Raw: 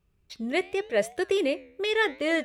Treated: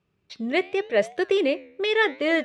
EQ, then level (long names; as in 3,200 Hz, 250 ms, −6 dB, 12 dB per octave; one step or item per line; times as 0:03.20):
band-pass filter 140–4,900 Hz
+3.5 dB